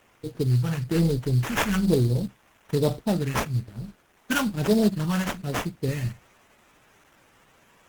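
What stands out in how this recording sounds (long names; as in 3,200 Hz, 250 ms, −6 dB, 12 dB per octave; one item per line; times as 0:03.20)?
a quantiser's noise floor 10 bits, dither triangular
phaser sweep stages 2, 1.1 Hz, lowest notch 400–1,800 Hz
aliases and images of a low sample rate 4,500 Hz, jitter 20%
Opus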